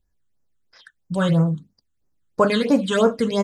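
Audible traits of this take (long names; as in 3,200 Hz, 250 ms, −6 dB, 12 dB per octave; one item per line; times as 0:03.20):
phaser sweep stages 8, 3 Hz, lowest notch 650–3,500 Hz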